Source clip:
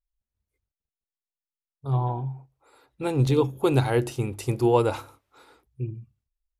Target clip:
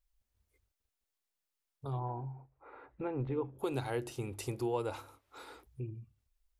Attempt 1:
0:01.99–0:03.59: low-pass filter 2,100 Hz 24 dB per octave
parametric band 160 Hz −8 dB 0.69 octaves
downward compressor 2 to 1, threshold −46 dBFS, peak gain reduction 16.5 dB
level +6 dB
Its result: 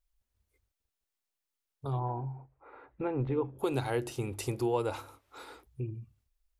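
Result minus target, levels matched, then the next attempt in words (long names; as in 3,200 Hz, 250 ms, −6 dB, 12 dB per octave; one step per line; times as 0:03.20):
downward compressor: peak gain reduction −4 dB
0:01.99–0:03.59: low-pass filter 2,100 Hz 24 dB per octave
parametric band 160 Hz −8 dB 0.69 octaves
downward compressor 2 to 1, threshold −54.5 dBFS, peak gain reduction 20.5 dB
level +6 dB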